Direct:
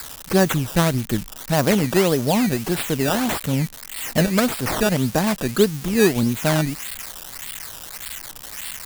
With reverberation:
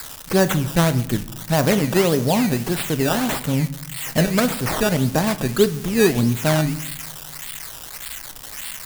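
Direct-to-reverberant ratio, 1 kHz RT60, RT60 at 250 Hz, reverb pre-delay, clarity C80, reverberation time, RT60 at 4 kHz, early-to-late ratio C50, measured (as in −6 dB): 10.5 dB, 0.80 s, 1.4 s, 6 ms, 18.0 dB, 0.75 s, 0.50 s, 15.5 dB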